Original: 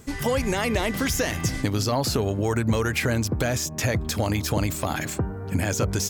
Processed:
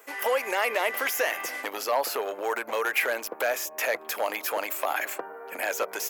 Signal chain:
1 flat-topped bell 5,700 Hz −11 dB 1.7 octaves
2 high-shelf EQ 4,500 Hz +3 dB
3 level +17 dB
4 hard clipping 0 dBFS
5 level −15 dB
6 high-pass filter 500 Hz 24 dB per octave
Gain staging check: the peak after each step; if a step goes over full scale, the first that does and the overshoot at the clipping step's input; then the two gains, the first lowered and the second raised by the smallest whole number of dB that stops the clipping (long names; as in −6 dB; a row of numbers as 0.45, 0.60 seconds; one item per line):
−11.5, −11.5, +5.5, 0.0, −15.0, −12.5 dBFS
step 3, 5.5 dB
step 3 +11 dB, step 5 −9 dB